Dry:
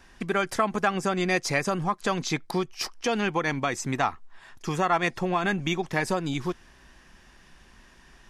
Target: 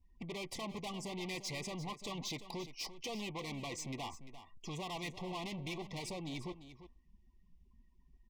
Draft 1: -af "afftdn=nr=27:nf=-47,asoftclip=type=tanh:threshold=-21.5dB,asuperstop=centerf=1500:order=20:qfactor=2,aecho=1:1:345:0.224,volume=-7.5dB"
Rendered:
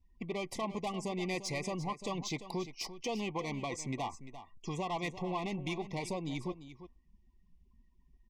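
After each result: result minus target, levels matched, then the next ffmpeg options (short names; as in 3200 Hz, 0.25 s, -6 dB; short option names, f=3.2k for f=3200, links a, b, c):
soft clip: distortion -7 dB; 4000 Hz band -4.5 dB
-af "afftdn=nr=27:nf=-47,asoftclip=type=tanh:threshold=-32dB,asuperstop=centerf=1500:order=20:qfactor=2,aecho=1:1:345:0.224,volume=-7.5dB"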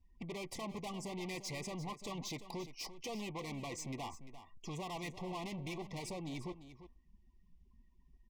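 4000 Hz band -3.0 dB
-af "afftdn=nr=27:nf=-47,asoftclip=type=tanh:threshold=-32dB,asuperstop=centerf=1500:order=20:qfactor=2,adynamicequalizer=threshold=0.00178:dfrequency=3500:dqfactor=1.3:tfrequency=3500:tqfactor=1.3:attack=5:release=100:ratio=0.4:range=2.5:mode=boostabove:tftype=bell,aecho=1:1:345:0.224,volume=-7.5dB"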